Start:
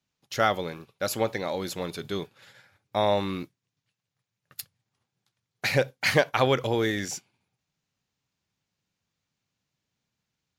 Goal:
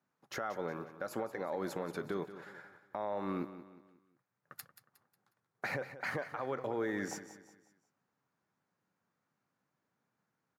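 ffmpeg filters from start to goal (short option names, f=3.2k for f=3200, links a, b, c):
-filter_complex "[0:a]highpass=190,highshelf=f=2.1k:t=q:w=1.5:g=-12.5,acompressor=threshold=-33dB:ratio=6,alimiter=level_in=5.5dB:limit=-24dB:level=0:latency=1:release=118,volume=-5.5dB,asplit=2[a][b];[b]aecho=0:1:181|362|543|724:0.224|0.0895|0.0358|0.0143[c];[a][c]amix=inputs=2:normalize=0,volume=3dB"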